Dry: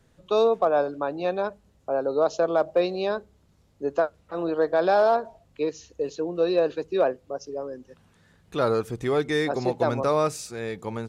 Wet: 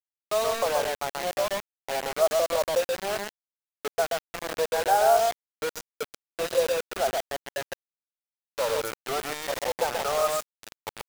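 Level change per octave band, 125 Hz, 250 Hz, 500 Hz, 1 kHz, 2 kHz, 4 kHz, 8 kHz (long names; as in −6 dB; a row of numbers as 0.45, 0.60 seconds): −12.0 dB, −13.5 dB, −3.0 dB, +0.5 dB, +1.5 dB, +5.5 dB, can't be measured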